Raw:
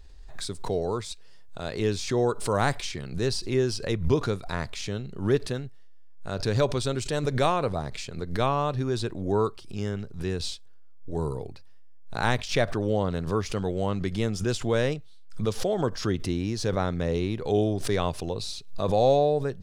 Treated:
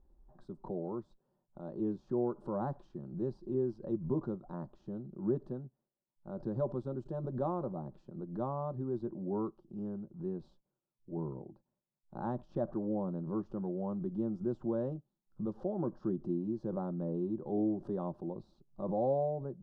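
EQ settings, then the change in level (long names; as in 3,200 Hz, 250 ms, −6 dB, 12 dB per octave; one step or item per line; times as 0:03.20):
pair of resonant band-passes 450 Hz, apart 1 octave
spectral tilt −4 dB per octave
phaser with its sweep stopped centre 440 Hz, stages 8
+1.5 dB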